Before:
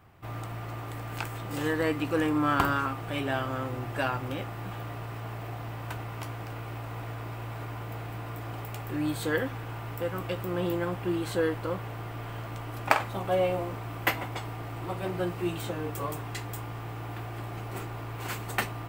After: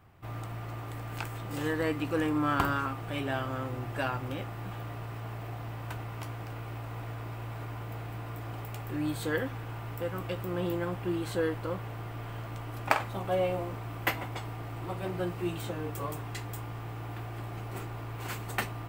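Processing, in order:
low-shelf EQ 160 Hz +3 dB
level −3 dB

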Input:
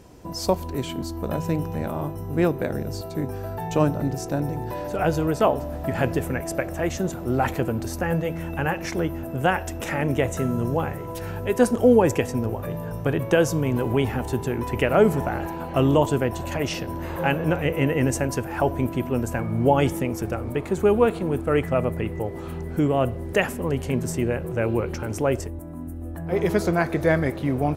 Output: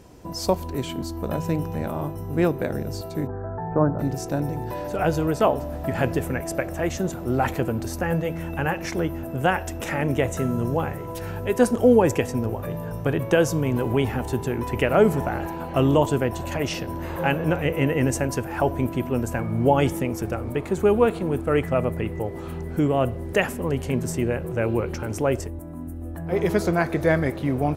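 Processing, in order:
0:03.27–0:03.99: Butterworth low-pass 1,700 Hz 48 dB per octave

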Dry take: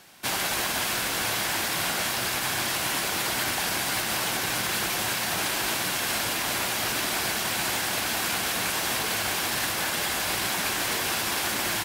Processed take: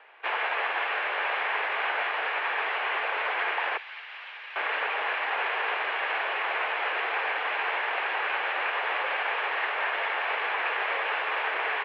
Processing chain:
0:03.77–0:04.56: first difference
single-sideband voice off tune +89 Hz 380–2,600 Hz
level +2.5 dB

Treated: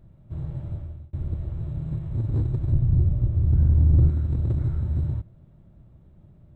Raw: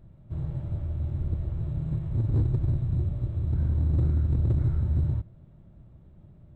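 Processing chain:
0:00.70–0:01.13: fade out
0:02.72–0:04.09: spectral tilt −2 dB per octave

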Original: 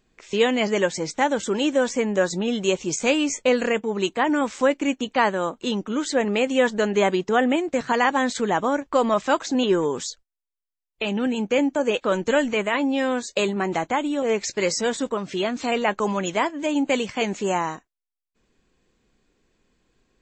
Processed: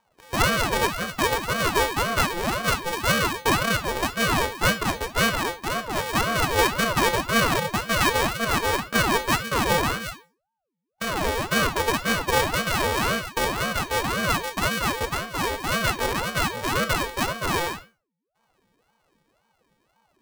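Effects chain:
samples sorted by size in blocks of 64 samples
four-comb reverb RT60 0.32 s, combs from 27 ms, DRR 9.5 dB
ring modulator whose carrier an LFO sweeps 540 Hz, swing 70%, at 1.9 Hz

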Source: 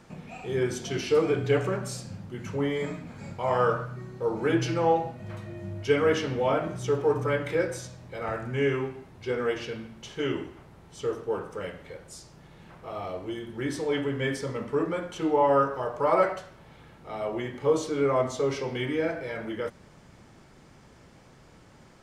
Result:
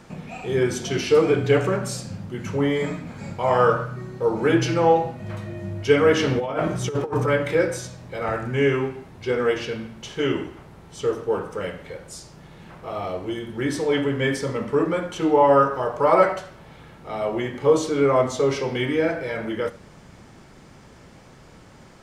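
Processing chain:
0:06.19–0:07.28: compressor whose output falls as the input rises −28 dBFS, ratio −0.5
on a send: convolution reverb, pre-delay 3 ms, DRR 16.5 dB
on the sum: level +6 dB

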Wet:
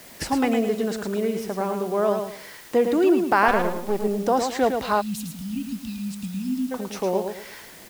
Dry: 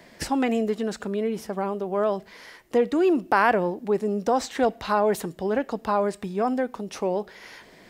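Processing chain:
0:03.48–0:04.04: gain on one half-wave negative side −12 dB
repeating echo 109 ms, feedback 29%, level −6 dB
0:05.01–0:06.72: time-frequency box erased 280–2,400 Hz
bit-depth reduction 8 bits, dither triangular
level +1 dB

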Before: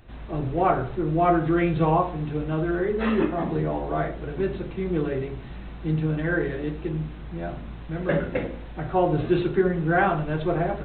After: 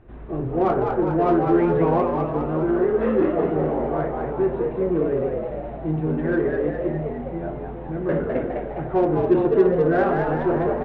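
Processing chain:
low-pass filter 1,600 Hz 12 dB per octave
parametric band 380 Hz +8 dB 0.61 octaves
hum removal 197.8 Hz, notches 7
in parallel at −4 dB: soft clipping −20.5 dBFS, distortion −8 dB
on the sum: echo with shifted repeats 205 ms, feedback 55%, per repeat +87 Hz, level −5 dB
level −4.5 dB

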